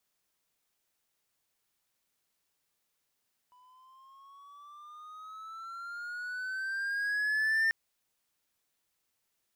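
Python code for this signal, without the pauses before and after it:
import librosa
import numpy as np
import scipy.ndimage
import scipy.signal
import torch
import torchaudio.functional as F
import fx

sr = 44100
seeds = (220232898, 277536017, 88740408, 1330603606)

y = fx.riser_tone(sr, length_s=4.19, level_db=-22, wave='triangle', hz=988.0, rise_st=10.5, swell_db=34.0)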